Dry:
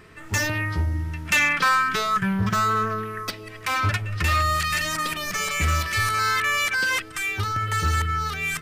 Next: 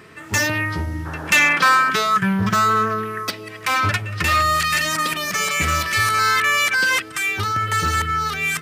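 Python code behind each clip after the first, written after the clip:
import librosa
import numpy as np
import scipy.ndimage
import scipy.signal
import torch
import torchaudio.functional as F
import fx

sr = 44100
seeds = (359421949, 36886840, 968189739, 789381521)

y = scipy.signal.sosfilt(scipy.signal.butter(2, 120.0, 'highpass', fs=sr, output='sos'), x)
y = fx.spec_paint(y, sr, seeds[0], shape='noise', start_s=1.05, length_s=0.86, low_hz=250.0, high_hz=1800.0, level_db=-39.0)
y = y * librosa.db_to_amplitude(5.0)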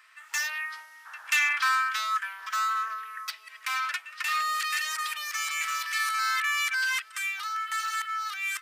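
y = scipy.signal.sosfilt(scipy.signal.butter(4, 1100.0, 'highpass', fs=sr, output='sos'), x)
y = y * librosa.db_to_amplitude(-9.0)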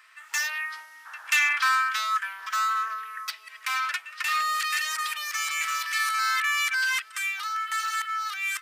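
y = fx.bass_treble(x, sr, bass_db=6, treble_db=0)
y = y * librosa.db_to_amplitude(2.0)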